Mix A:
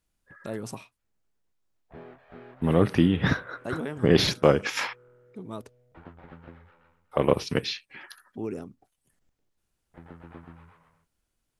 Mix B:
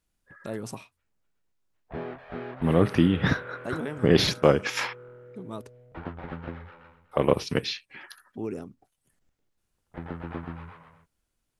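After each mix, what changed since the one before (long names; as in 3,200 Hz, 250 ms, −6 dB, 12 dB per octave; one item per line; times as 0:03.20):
background +10.0 dB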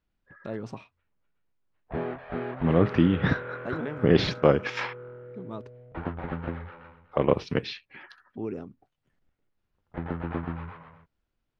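background +4.5 dB
master: add high-frequency loss of the air 200 metres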